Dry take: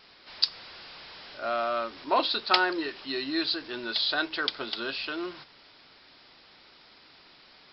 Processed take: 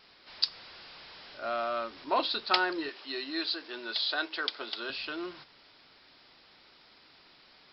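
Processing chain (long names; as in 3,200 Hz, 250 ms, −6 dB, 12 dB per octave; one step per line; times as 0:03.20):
0:02.89–0:04.90: high-pass filter 320 Hz 12 dB per octave
level −3.5 dB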